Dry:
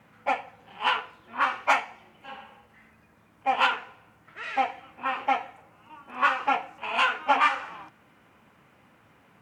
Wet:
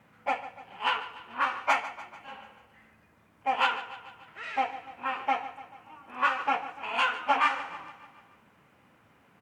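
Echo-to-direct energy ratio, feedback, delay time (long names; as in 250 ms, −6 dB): −13.0 dB, 58%, 146 ms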